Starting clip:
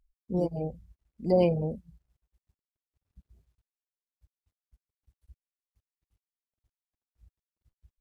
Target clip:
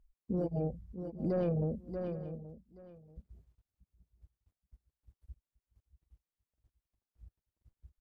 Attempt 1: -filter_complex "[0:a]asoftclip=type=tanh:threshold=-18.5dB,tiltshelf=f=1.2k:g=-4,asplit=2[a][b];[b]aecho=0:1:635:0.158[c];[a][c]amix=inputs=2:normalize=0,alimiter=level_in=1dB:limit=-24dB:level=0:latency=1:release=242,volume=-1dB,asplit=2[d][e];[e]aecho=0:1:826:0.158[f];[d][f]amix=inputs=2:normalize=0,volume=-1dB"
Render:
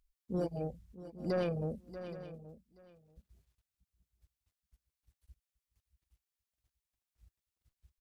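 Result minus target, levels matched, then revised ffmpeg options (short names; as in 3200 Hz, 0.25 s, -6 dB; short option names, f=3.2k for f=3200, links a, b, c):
1000 Hz band +3.5 dB
-filter_complex "[0:a]asoftclip=type=tanh:threshold=-18.5dB,tiltshelf=f=1.2k:g=5,asplit=2[a][b];[b]aecho=0:1:635:0.158[c];[a][c]amix=inputs=2:normalize=0,alimiter=level_in=1dB:limit=-24dB:level=0:latency=1:release=242,volume=-1dB,asplit=2[d][e];[e]aecho=0:1:826:0.158[f];[d][f]amix=inputs=2:normalize=0,volume=-1dB"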